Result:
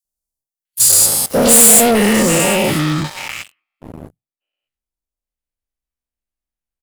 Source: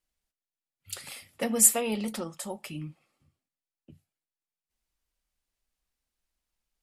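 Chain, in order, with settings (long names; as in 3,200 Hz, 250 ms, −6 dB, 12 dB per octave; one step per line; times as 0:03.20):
every bin's largest magnitude spread in time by 240 ms
high-shelf EQ 2,100 Hz +5 dB, from 0:01.26 −7 dB
three-band delay without the direct sound highs, lows, mids 50/650 ms, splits 1,100/4,500 Hz
leveller curve on the samples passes 5
high-shelf EQ 6,800 Hz +5 dB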